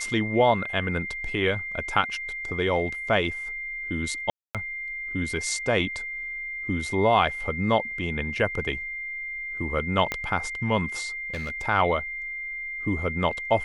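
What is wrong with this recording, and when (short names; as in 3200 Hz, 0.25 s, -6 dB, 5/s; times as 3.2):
tone 2100 Hz -31 dBFS
4.3–4.55 gap 0.247 s
10.12 pop -12 dBFS
11.34–11.67 clipped -27.5 dBFS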